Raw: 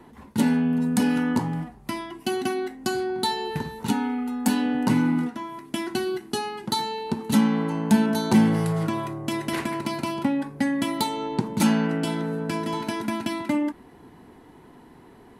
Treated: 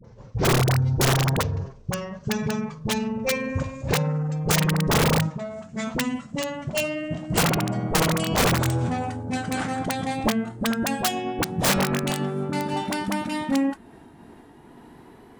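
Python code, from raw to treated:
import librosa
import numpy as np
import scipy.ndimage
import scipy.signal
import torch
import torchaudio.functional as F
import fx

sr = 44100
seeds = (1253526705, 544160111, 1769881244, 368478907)

y = fx.pitch_glide(x, sr, semitones=-11.5, runs='ending unshifted')
y = (np.mod(10.0 ** (17.0 / 20.0) * y + 1.0, 2.0) - 1.0) / 10.0 ** (17.0 / 20.0)
y = fx.dispersion(y, sr, late='highs', ms=45.0, hz=670.0)
y = y * 10.0 ** (2.5 / 20.0)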